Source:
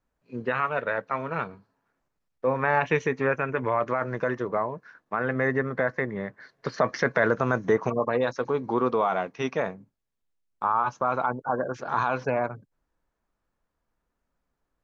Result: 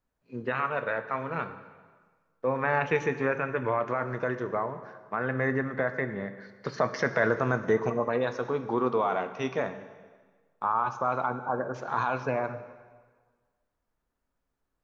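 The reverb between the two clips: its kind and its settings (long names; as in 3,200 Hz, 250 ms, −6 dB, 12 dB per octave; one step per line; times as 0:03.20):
dense smooth reverb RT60 1.5 s, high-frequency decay 0.9×, pre-delay 0 ms, DRR 9.5 dB
level −3 dB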